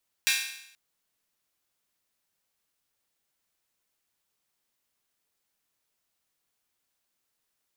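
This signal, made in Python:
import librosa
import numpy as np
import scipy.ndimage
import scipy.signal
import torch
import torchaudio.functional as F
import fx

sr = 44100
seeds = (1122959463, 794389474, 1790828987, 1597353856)

y = fx.drum_hat_open(sr, length_s=0.48, from_hz=2100.0, decay_s=0.75)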